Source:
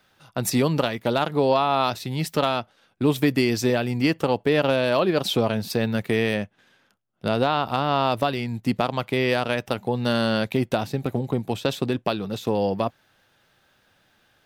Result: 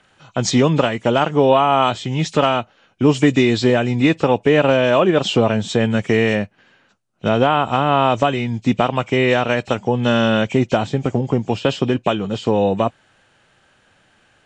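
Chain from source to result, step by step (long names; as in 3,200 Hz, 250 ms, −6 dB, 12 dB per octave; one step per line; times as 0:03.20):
hearing-aid frequency compression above 2,200 Hz 1.5 to 1
level +6.5 dB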